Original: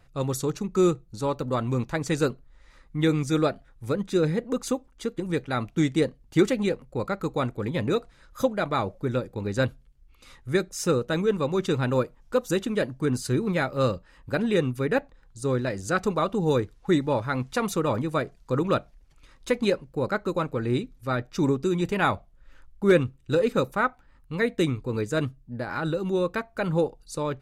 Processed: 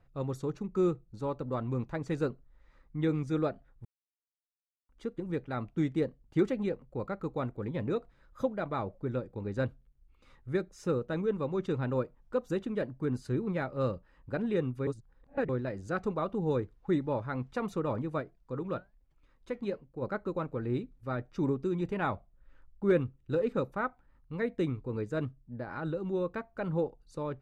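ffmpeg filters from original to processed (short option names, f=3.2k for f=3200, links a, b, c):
-filter_complex "[0:a]asplit=3[a][b][c];[a]afade=t=out:st=18.2:d=0.02[d];[b]flanger=delay=2.8:depth=3.1:regen=85:speed=1.2:shape=triangular,afade=t=in:st=18.2:d=0.02,afade=t=out:st=20.01:d=0.02[e];[c]afade=t=in:st=20.01:d=0.02[f];[d][e][f]amix=inputs=3:normalize=0,asplit=5[g][h][i][j][k];[g]atrim=end=3.85,asetpts=PTS-STARTPTS,afade=t=out:st=3.846:d=0.004:c=hsin[l];[h]atrim=start=3.85:end=4.89,asetpts=PTS-STARTPTS,volume=0[m];[i]atrim=start=4.89:end=14.872,asetpts=PTS-STARTPTS,afade=t=in:d=0.004:c=hsin[n];[j]atrim=start=14.868:end=15.492,asetpts=PTS-STARTPTS,areverse[o];[k]atrim=start=15.488[p];[l][m][n]concat=n=3:v=0:a=1[q];[q][o]acrossfade=d=0.004:c1=hsin:c2=hsin[r];[r][p]acrossfade=d=0.004:c1=hsin:c2=hsin,lowpass=f=1.3k:p=1,volume=-6.5dB"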